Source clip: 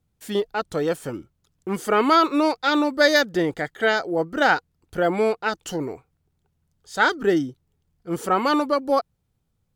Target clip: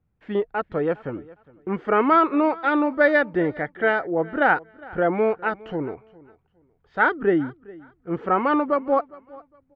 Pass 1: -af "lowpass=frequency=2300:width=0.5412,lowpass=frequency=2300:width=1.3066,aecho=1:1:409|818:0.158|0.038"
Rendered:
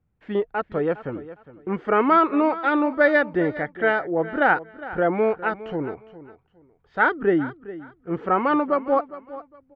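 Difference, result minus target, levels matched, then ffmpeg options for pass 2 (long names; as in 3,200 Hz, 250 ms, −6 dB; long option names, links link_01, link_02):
echo-to-direct +6 dB
-af "lowpass=frequency=2300:width=0.5412,lowpass=frequency=2300:width=1.3066,aecho=1:1:409|818:0.0794|0.0191"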